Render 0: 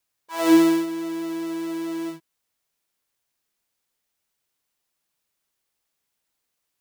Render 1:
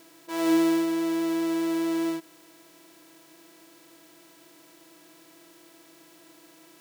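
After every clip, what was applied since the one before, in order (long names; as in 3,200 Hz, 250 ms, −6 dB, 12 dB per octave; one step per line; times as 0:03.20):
compressor on every frequency bin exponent 0.4
level −8 dB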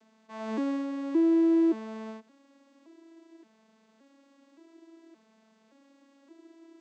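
vocoder with an arpeggio as carrier major triad, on A3, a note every 571 ms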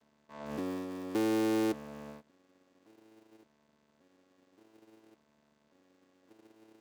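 sub-harmonics by changed cycles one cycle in 3, muted
level −5 dB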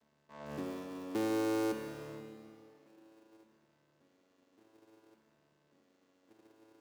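convolution reverb RT60 2.7 s, pre-delay 21 ms, DRR 5 dB
level −3.5 dB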